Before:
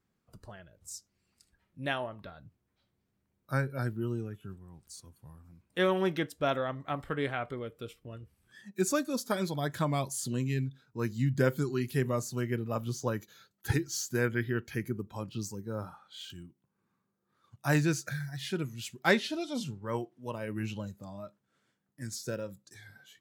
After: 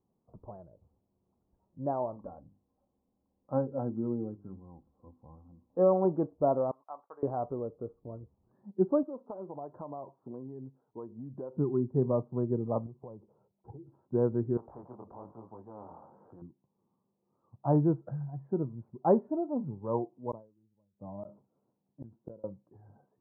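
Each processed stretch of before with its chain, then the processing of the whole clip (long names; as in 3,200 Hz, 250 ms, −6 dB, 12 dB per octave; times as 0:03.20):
0:02.16–0:06.05: mains-hum notches 50/100/150/200/250/300/350/400 Hz + comb filter 3.8 ms, depth 51%
0:06.71–0:07.23: noise gate −48 dBFS, range −22 dB + high-pass filter 1,300 Hz
0:09.03–0:11.57: bass and treble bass −14 dB, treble −14 dB + downward compressor 5 to 1, threshold −40 dBFS
0:12.86–0:13.92: downward compressor 16 to 1, threshold −42 dBFS + low-pass filter 1,100 Hz 24 dB per octave + parametric band 280 Hz −8.5 dB 0.22 octaves
0:14.57–0:16.42: chorus effect 1.1 Hz, delay 17 ms, depth 7.7 ms + every bin compressed towards the loudest bin 4 to 1
0:20.31–0:22.44: high-frequency loss of the air 410 metres + gate with flip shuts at −34 dBFS, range −36 dB + level that may fall only so fast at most 140 dB per second
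whole clip: Butterworth low-pass 1,000 Hz 48 dB per octave; low-shelf EQ 160 Hz −7.5 dB; level +4.5 dB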